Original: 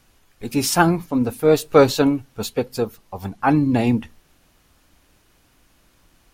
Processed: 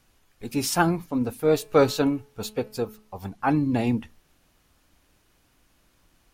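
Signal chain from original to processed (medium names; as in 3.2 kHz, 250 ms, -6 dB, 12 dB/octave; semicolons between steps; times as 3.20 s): 1.43–3.18 s: de-hum 214.5 Hz, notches 13; trim -5.5 dB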